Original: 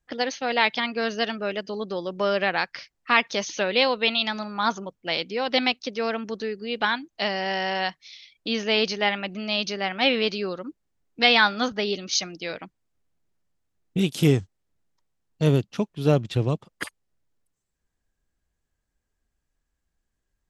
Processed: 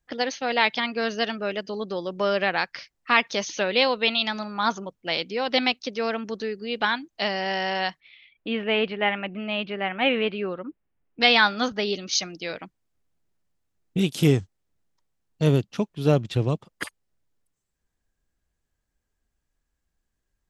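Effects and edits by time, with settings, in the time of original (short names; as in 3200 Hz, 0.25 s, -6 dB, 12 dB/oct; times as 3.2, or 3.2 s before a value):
8–11.21 steep low-pass 3000 Hz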